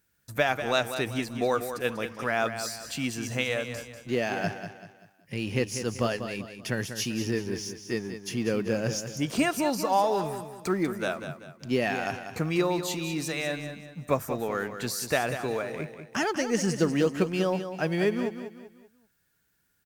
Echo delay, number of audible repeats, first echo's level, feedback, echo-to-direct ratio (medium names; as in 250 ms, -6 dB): 193 ms, 4, -9.5 dB, 38%, -9.0 dB